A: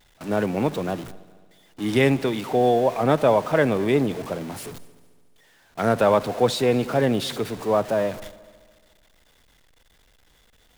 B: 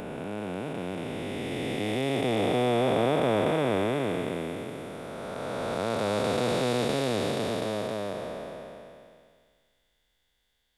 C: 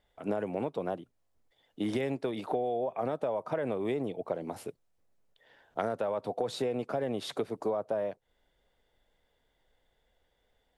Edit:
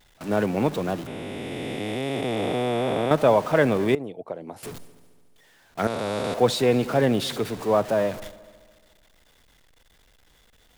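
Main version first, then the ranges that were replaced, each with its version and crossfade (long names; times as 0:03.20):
A
0:01.07–0:03.11: punch in from B
0:03.95–0:04.63: punch in from C
0:05.87–0:06.34: punch in from B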